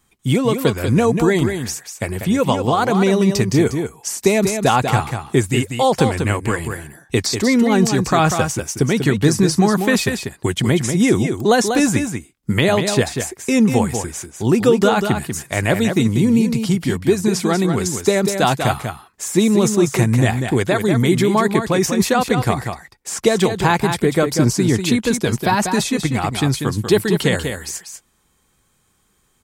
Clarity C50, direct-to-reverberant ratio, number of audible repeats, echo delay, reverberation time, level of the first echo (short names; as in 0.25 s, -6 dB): none, none, 1, 0.192 s, none, -7.0 dB